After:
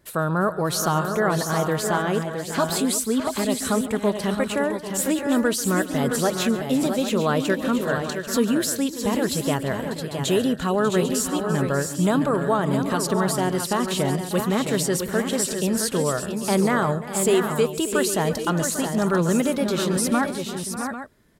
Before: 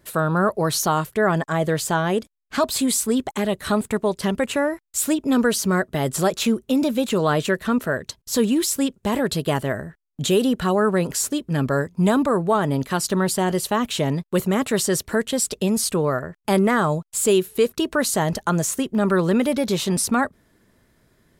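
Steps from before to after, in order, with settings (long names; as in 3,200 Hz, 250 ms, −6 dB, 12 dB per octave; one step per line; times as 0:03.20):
multi-tap delay 140/345/593/647/666/795 ms −18/−16/−14/−17/−7/−12 dB
level −2.5 dB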